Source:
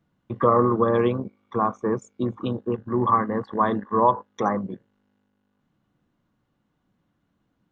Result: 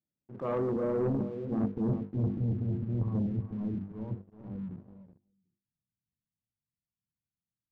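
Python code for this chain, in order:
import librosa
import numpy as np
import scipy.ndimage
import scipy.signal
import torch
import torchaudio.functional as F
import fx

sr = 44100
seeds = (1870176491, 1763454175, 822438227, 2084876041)

y = fx.wiener(x, sr, points=41)
y = fx.doppler_pass(y, sr, speed_mps=13, closest_m=5.4, pass_at_s=2.03)
y = fx.highpass(y, sr, hz=58.0, slope=6)
y = fx.hum_notches(y, sr, base_hz=50, count=10)
y = fx.transient(y, sr, attack_db=-8, sustain_db=9)
y = fx.filter_sweep_lowpass(y, sr, from_hz=1000.0, to_hz=140.0, start_s=0.26, end_s=2.3, q=0.89)
y = fx.rider(y, sr, range_db=4, speed_s=0.5)
y = fx.echo_feedback(y, sr, ms=373, feedback_pct=17, wet_db=-11.5)
y = fx.leveller(y, sr, passes=2)
y = fx.lowpass(y, sr, hz=3100.0, slope=6)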